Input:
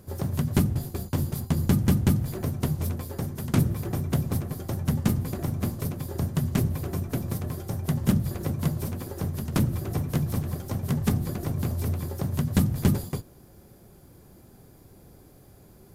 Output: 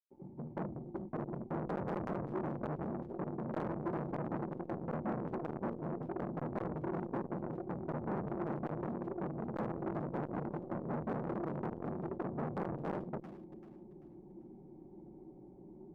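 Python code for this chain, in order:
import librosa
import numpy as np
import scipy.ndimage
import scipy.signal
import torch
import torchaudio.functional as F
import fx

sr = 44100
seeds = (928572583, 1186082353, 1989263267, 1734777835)

y = fx.fade_in_head(x, sr, length_s=1.79)
y = fx.low_shelf(y, sr, hz=120.0, db=-7.0)
y = y + 0.8 * np.pad(y, (int(5.4 * sr / 1000.0), 0))[:len(y)]
y = fx.dynamic_eq(y, sr, hz=940.0, q=1.3, threshold_db=-44.0, ratio=4.0, max_db=-4)
y = fx.quant_companded(y, sr, bits=4)
y = fx.formant_cascade(y, sr, vowel='u')
y = np.clip(10.0 ** (35.0 / 20.0) * y, -1.0, 1.0) / 10.0 ** (35.0 / 20.0)
y = fx.echo_thinned(y, sr, ms=389, feedback_pct=35, hz=460.0, wet_db=-14.0)
y = fx.transformer_sat(y, sr, knee_hz=720.0)
y = y * librosa.db_to_amplitude(8.0)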